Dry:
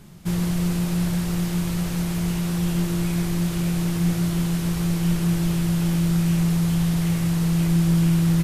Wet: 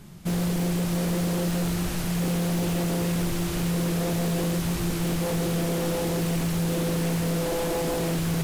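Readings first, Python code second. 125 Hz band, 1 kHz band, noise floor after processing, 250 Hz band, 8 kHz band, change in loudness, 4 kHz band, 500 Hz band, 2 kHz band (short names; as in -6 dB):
-6.0 dB, +2.5 dB, -29 dBFS, -5.0 dB, 0.0 dB, -4.0 dB, 0.0 dB, +7.0 dB, +0.5 dB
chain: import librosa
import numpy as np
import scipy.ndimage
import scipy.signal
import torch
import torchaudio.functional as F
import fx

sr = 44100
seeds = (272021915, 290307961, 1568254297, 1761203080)

y = fx.echo_diffused(x, sr, ms=660, feedback_pct=46, wet_db=-7)
y = 10.0 ** (-21.0 / 20.0) * (np.abs((y / 10.0 ** (-21.0 / 20.0) + 3.0) % 4.0 - 2.0) - 1.0)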